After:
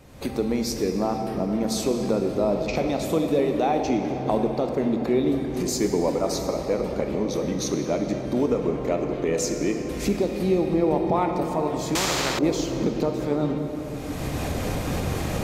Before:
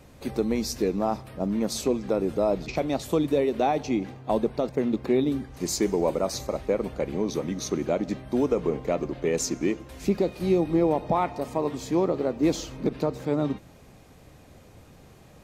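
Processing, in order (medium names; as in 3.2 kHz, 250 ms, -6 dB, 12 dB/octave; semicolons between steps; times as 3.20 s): recorder AGC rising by 30 dB/s; on a send at -4 dB: reverberation RT60 4.7 s, pre-delay 28 ms; 11.95–12.39 s: on the sum: spectrum-flattening compressor 4:1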